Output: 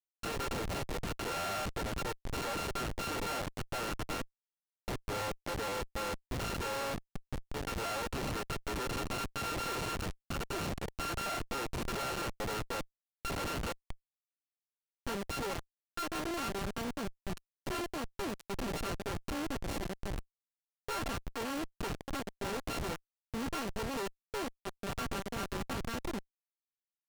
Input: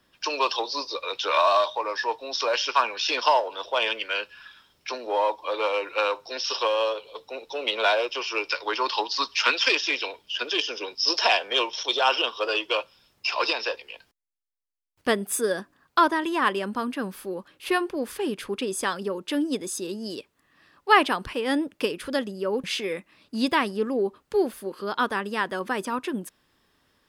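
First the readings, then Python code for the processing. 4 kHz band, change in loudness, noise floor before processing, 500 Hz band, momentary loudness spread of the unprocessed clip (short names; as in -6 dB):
-15.5 dB, -12.5 dB, -69 dBFS, -13.0 dB, 12 LU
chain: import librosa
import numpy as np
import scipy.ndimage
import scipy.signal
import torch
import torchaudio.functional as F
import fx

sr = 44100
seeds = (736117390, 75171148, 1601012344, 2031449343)

y = np.r_[np.sort(x[:len(x) // 32 * 32].reshape(-1, 32), axis=1).ravel(), x[len(x) // 32 * 32:]]
y = fx.schmitt(y, sr, flips_db=-27.5)
y = fx.doppler_dist(y, sr, depth_ms=0.17)
y = y * librosa.db_to_amplitude(-8.5)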